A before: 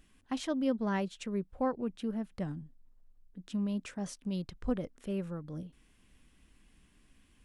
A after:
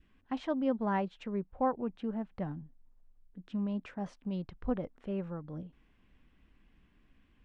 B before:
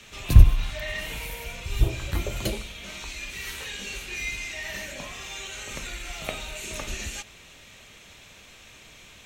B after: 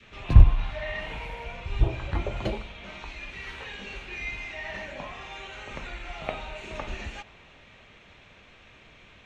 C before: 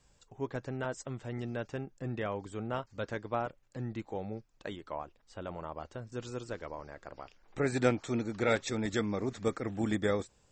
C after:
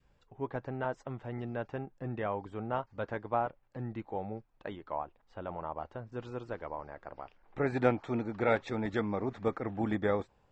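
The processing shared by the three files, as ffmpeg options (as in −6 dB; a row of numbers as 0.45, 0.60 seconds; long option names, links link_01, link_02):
-af "lowpass=2600,adynamicequalizer=threshold=0.00282:dfrequency=840:dqfactor=1.8:tfrequency=840:tqfactor=1.8:attack=5:release=100:ratio=0.375:range=3.5:mode=boostabove:tftype=bell,volume=-1dB"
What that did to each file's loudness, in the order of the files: 0.0, −1.5, 0.0 LU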